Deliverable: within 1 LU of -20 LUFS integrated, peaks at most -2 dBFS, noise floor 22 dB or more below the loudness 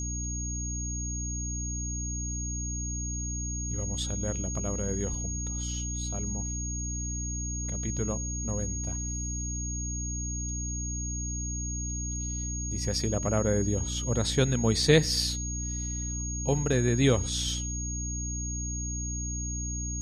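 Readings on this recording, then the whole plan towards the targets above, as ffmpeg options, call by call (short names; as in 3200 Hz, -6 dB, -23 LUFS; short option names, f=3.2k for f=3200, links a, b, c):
hum 60 Hz; harmonics up to 300 Hz; hum level -32 dBFS; steady tone 6600 Hz; tone level -35 dBFS; loudness -30.0 LUFS; peak -8.0 dBFS; loudness target -20.0 LUFS
-> -af "bandreject=f=60:t=h:w=6,bandreject=f=120:t=h:w=6,bandreject=f=180:t=h:w=6,bandreject=f=240:t=h:w=6,bandreject=f=300:t=h:w=6"
-af "bandreject=f=6.6k:w=30"
-af "volume=10dB,alimiter=limit=-2dB:level=0:latency=1"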